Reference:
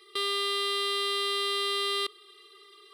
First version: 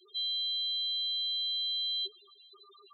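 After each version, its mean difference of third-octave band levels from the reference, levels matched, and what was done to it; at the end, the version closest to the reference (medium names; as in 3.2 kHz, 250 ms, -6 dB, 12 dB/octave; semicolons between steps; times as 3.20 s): 15.0 dB: fifteen-band graphic EQ 160 Hz +4 dB, 6.3 kHz +9 dB, 16 kHz +5 dB; loudest bins only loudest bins 2; trim +4 dB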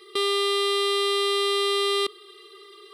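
1.5 dB: in parallel at -3.5 dB: overload inside the chain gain 28 dB; on the sum: bass shelf 490 Hz +10 dB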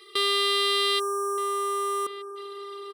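4.0 dB: spectral selection erased 0.99–2.36 s, 1.6–5.5 kHz; echo from a far wall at 210 m, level -9 dB; trim +5.5 dB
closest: second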